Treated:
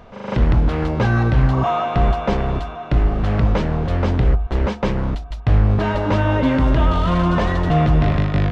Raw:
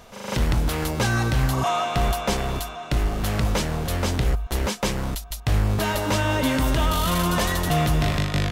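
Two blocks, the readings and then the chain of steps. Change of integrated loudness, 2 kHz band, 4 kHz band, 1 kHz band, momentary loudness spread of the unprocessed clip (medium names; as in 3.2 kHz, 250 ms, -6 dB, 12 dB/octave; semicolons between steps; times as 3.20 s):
+5.0 dB, +0.5 dB, -5.5 dB, +3.5 dB, 5 LU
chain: tape spacing loss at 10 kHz 36 dB; de-hum 71.83 Hz, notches 13; trim +7 dB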